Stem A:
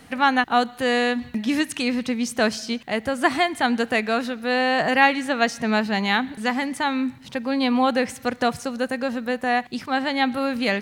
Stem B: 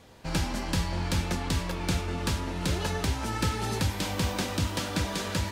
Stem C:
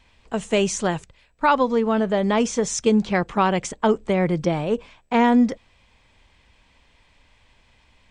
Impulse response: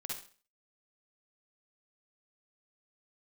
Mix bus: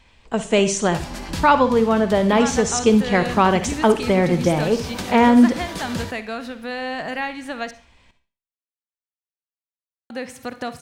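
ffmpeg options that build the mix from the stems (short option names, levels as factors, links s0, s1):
-filter_complex "[0:a]acompressor=threshold=0.0398:ratio=2,adelay=2200,volume=0.708,asplit=3[s0][s1][s2];[s0]atrim=end=7.71,asetpts=PTS-STARTPTS,afade=t=out:st=7.706:d=0.004:c=hsin[s3];[s1]atrim=start=7.71:end=10.1,asetpts=PTS-STARTPTS,volume=0[s4];[s2]atrim=start=10.1,asetpts=PTS-STARTPTS,afade=t=in:d=0.004:c=hsin[s5];[s3][s4][s5]concat=n=3:v=0:a=1,asplit=2[s6][s7];[s7]volume=0.335[s8];[1:a]acrossover=split=650[s9][s10];[s9]aeval=exprs='val(0)*(1-0.5/2+0.5/2*cos(2*PI*9.7*n/s))':c=same[s11];[s10]aeval=exprs='val(0)*(1-0.5/2-0.5/2*cos(2*PI*9.7*n/s))':c=same[s12];[s11][s12]amix=inputs=2:normalize=0,adelay=600,volume=1.12,asplit=2[s13][s14];[s14]volume=0.501[s15];[2:a]volume=1.12,asplit=3[s16][s17][s18];[s17]volume=0.501[s19];[s18]apad=whole_len=269790[s20];[s13][s20]sidechaincompress=threshold=0.0251:ratio=8:attack=16:release=205[s21];[3:a]atrim=start_sample=2205[s22];[s8][s15][s19]amix=inputs=3:normalize=0[s23];[s23][s22]afir=irnorm=-1:irlink=0[s24];[s6][s21][s16][s24]amix=inputs=4:normalize=0"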